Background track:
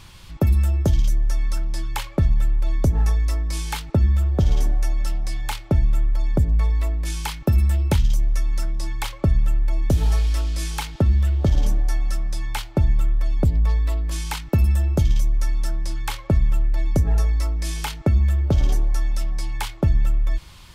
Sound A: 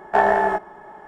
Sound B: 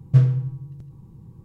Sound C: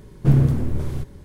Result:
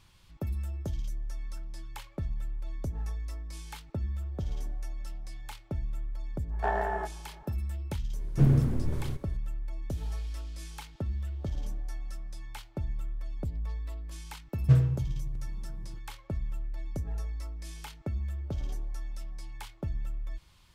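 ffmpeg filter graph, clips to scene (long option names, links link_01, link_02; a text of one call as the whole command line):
ffmpeg -i bed.wav -i cue0.wav -i cue1.wav -i cue2.wav -filter_complex "[0:a]volume=-16dB[link_01];[2:a]lowshelf=frequency=120:gain=-7.5[link_02];[1:a]atrim=end=1.07,asetpts=PTS-STARTPTS,volume=-13dB,afade=type=in:duration=0.05,afade=type=out:start_time=1.02:duration=0.05,adelay=6490[link_03];[3:a]atrim=end=1.24,asetpts=PTS-STARTPTS,volume=-6.5dB,afade=type=in:duration=0.004:curve=hsin,afade=type=out:start_time=1.236:duration=0.004:curve=hsin,adelay=8130[link_04];[link_02]atrim=end=1.44,asetpts=PTS-STARTPTS,volume=-2.5dB,afade=type=in:duration=0.004:curve=hsin,afade=type=out:start_time=1.436:duration=0.004:curve=hsin,adelay=14550[link_05];[link_01][link_03][link_04][link_05]amix=inputs=4:normalize=0" out.wav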